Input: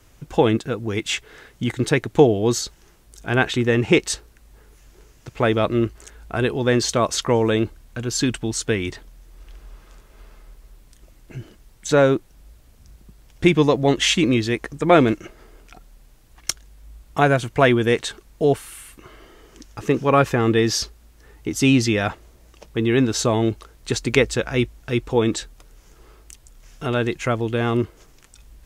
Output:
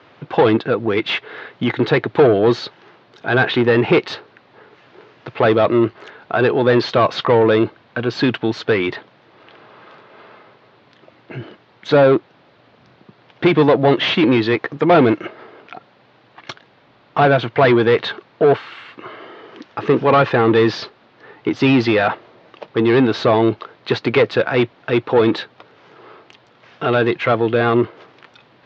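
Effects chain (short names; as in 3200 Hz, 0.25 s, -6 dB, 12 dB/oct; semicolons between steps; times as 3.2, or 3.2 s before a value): overdrive pedal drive 24 dB, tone 1300 Hz, clips at -1.5 dBFS; elliptic band-pass 110–4100 Hz, stop band 40 dB; gain -1 dB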